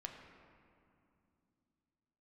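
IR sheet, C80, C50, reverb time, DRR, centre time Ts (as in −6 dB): 5.5 dB, 4.5 dB, 2.6 s, 2.0 dB, 57 ms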